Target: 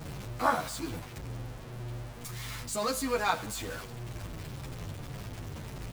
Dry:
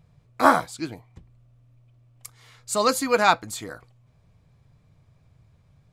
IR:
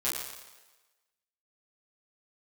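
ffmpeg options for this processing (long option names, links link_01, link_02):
-filter_complex "[0:a]aeval=exprs='val(0)+0.5*0.0631*sgn(val(0))':channel_layout=same,aeval=exprs='val(0)+0.02*(sin(2*PI*50*n/s)+sin(2*PI*2*50*n/s)/2+sin(2*PI*3*50*n/s)/3+sin(2*PI*4*50*n/s)/4+sin(2*PI*5*50*n/s)/5)':channel_layout=same,asplit=2[link_01][link_02];[1:a]atrim=start_sample=2205,adelay=32[link_03];[link_02][link_03]afir=irnorm=-1:irlink=0,volume=-22.5dB[link_04];[link_01][link_04]amix=inputs=2:normalize=0,asplit=2[link_05][link_06];[link_06]adelay=10.4,afreqshift=-1.8[link_07];[link_05][link_07]amix=inputs=2:normalize=1,volume=-8.5dB"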